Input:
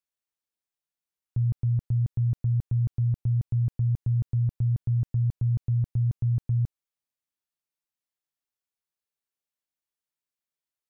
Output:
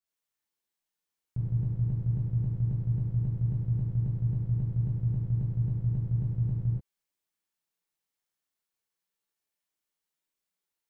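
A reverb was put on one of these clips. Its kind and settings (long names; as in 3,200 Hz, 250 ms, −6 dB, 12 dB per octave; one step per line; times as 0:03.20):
reverb whose tail is shaped and stops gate 160 ms flat, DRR −8 dB
level −5 dB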